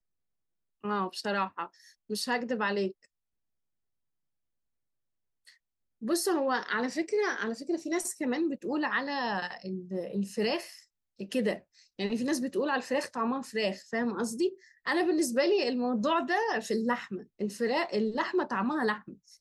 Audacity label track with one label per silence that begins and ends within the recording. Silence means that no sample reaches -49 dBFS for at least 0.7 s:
3.050000	5.470000	silence